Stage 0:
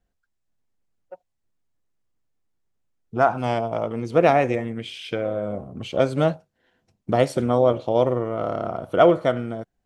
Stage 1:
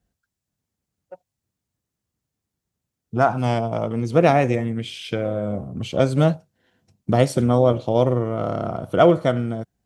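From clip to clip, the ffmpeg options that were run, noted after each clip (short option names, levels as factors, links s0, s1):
-af "highpass=69,bass=f=250:g=8,treble=f=4000:g=6"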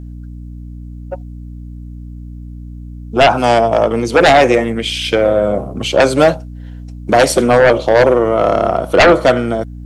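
-filter_complex "[0:a]acrossover=split=300[s0][s1];[s0]alimiter=limit=0.0708:level=0:latency=1[s2];[s1]aeval=exprs='0.668*sin(PI/2*3.55*val(0)/0.668)':c=same[s3];[s2][s3]amix=inputs=2:normalize=0,aeval=exprs='val(0)+0.0398*(sin(2*PI*60*n/s)+sin(2*PI*2*60*n/s)/2+sin(2*PI*3*60*n/s)/3+sin(2*PI*4*60*n/s)/4+sin(2*PI*5*60*n/s)/5)':c=same"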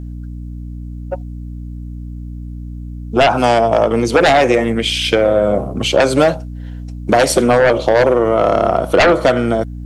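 -af "acompressor=threshold=0.316:ratio=6,volume=1.26"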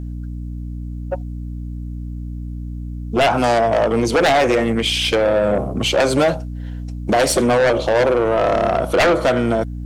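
-af "asoftclip=type=tanh:threshold=0.299"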